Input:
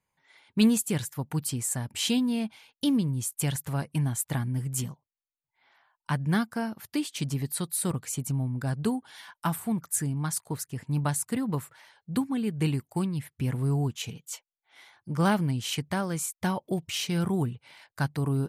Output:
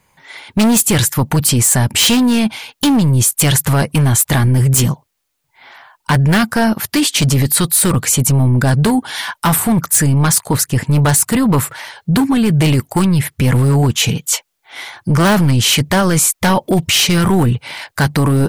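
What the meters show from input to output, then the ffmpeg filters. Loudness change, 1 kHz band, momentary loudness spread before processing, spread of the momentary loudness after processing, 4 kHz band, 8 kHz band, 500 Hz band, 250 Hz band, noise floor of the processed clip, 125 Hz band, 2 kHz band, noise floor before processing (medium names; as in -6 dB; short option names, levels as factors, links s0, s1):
+16.0 dB, +16.0 dB, 9 LU, 7 LU, +18.5 dB, +18.5 dB, +15.5 dB, +14.0 dB, -68 dBFS, +16.5 dB, +18.0 dB, under -85 dBFS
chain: -af "volume=11.9,asoftclip=hard,volume=0.0841,apsyclip=42.2,volume=0.376"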